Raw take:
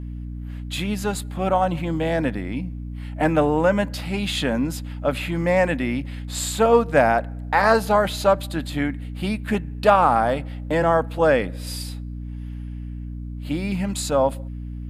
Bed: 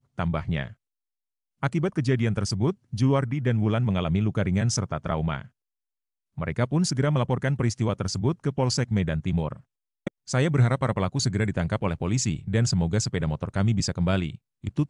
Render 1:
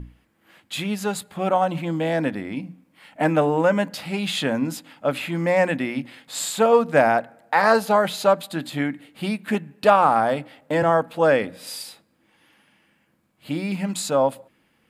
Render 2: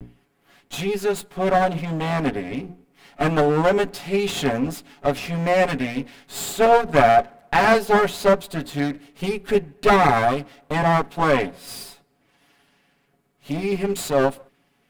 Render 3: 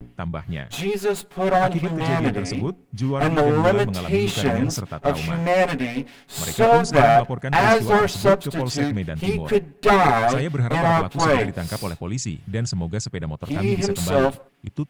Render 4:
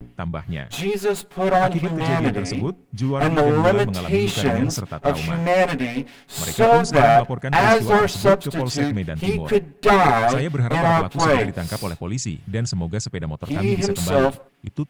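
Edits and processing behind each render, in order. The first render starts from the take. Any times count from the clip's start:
notches 60/120/180/240/300 Hz
minimum comb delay 7.1 ms; small resonant body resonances 210/400/710 Hz, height 9 dB, ringing for 85 ms
add bed -2 dB
gain +1 dB; limiter -3 dBFS, peak gain reduction 1.5 dB

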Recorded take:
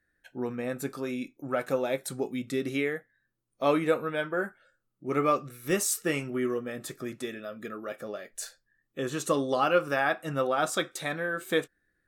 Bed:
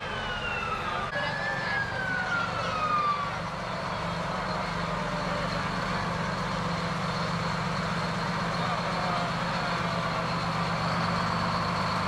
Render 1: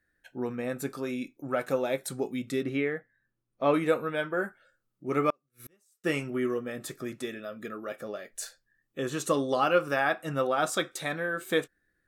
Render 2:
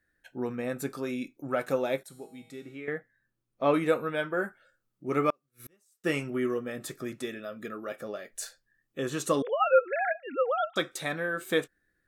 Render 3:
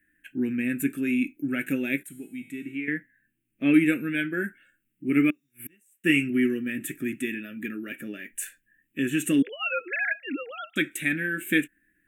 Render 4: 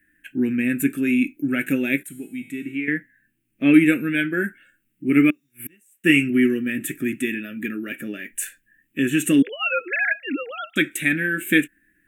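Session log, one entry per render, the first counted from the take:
2.63–3.74 tone controls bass +2 dB, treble -15 dB; 5.3–6.04 flipped gate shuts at -34 dBFS, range -40 dB
2.03–2.88 resonator 160 Hz, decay 1.1 s, mix 80%; 9.42–10.76 sine-wave speech
5.11–5.68 spectral repair 3500–7400 Hz after; EQ curve 110 Hz 0 dB, 300 Hz +12 dB, 480 Hz -11 dB, 1100 Hz -22 dB, 1600 Hz +6 dB, 2700 Hz +13 dB, 4600 Hz -18 dB, 7900 Hz +5 dB, 14000 Hz +10 dB
gain +5.5 dB

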